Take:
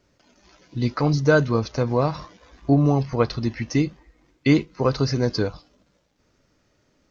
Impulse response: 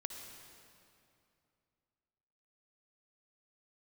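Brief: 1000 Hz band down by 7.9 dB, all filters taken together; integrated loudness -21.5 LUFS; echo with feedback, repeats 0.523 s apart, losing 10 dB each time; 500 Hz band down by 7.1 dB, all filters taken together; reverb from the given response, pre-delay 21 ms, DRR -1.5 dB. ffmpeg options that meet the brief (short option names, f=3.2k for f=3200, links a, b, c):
-filter_complex "[0:a]equalizer=f=500:t=o:g=-6.5,equalizer=f=1k:t=o:g=-8.5,aecho=1:1:523|1046|1569|2092:0.316|0.101|0.0324|0.0104,asplit=2[a][b];[1:a]atrim=start_sample=2205,adelay=21[c];[b][c]afir=irnorm=-1:irlink=0,volume=3dB[d];[a][d]amix=inputs=2:normalize=0,volume=-1dB"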